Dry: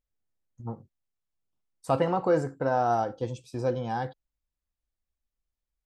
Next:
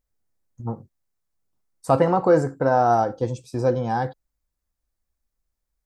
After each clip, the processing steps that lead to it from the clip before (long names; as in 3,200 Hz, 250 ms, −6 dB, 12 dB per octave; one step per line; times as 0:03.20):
parametric band 3,000 Hz −7.5 dB 0.79 octaves
level +7 dB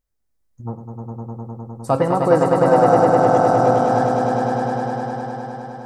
echo that builds up and dies away 102 ms, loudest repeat 5, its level −4.5 dB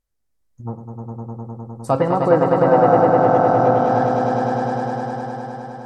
treble cut that deepens with the level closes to 3,000 Hz, closed at −10.5 dBFS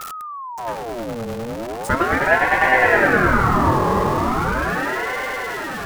converter with a step at zero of −22.5 dBFS
ring modulator whose carrier an LFO sweeps 810 Hz, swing 60%, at 0.38 Hz